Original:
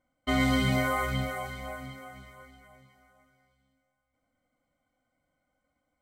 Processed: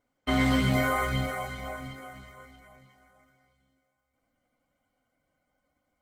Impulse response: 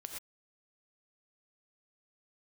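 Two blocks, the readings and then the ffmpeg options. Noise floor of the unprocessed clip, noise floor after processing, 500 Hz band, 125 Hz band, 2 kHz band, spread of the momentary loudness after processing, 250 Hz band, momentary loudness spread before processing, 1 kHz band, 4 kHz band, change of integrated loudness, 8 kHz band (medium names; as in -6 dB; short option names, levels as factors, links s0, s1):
-81 dBFS, -80 dBFS, +1.5 dB, +1.5 dB, +1.0 dB, 18 LU, +1.5 dB, 19 LU, +1.0 dB, +0.5 dB, +1.0 dB, +0.5 dB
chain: -af "volume=1.19" -ar 48000 -c:a libopus -b:a 16k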